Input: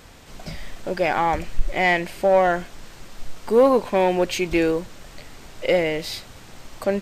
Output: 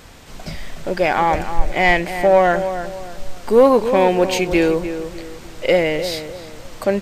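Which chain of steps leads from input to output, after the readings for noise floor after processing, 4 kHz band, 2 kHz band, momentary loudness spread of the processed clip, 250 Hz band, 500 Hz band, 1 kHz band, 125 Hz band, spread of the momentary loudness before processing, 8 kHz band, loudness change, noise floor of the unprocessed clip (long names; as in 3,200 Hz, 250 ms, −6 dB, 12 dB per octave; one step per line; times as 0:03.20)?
−38 dBFS, +4.0 dB, +4.0 dB, 20 LU, +4.5 dB, +4.5 dB, +4.5 dB, +4.5 dB, 20 LU, +4.0 dB, +4.0 dB, −45 dBFS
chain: feedback echo with a low-pass in the loop 301 ms, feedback 36%, low-pass 1,800 Hz, level −9.5 dB
level +4 dB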